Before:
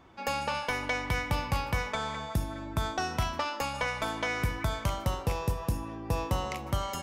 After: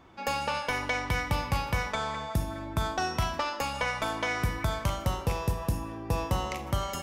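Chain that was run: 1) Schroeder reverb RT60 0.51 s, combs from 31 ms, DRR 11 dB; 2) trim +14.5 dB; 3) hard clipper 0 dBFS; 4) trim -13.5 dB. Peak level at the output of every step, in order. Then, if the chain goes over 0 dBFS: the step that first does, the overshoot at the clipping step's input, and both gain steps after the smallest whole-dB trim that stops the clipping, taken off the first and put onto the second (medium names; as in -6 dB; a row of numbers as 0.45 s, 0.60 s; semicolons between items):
-18.0 dBFS, -3.5 dBFS, -3.5 dBFS, -17.0 dBFS; nothing clips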